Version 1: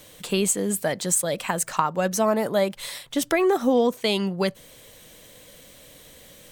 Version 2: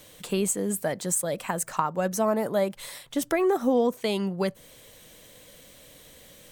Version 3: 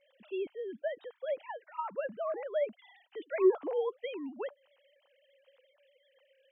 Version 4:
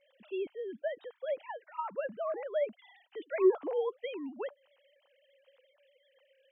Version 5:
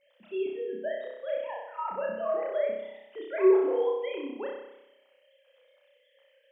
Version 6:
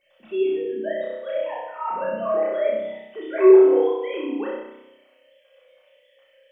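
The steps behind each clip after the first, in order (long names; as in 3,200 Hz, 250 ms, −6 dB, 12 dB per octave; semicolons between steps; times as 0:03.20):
dynamic equaliser 3,600 Hz, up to −6 dB, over −40 dBFS, Q 0.73; level −2.5 dB
three sine waves on the formant tracks; level −8 dB
no processing that can be heard
flutter between parallel walls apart 5.4 metres, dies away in 0.89 s
rectangular room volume 930 cubic metres, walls furnished, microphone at 3.5 metres; level +2.5 dB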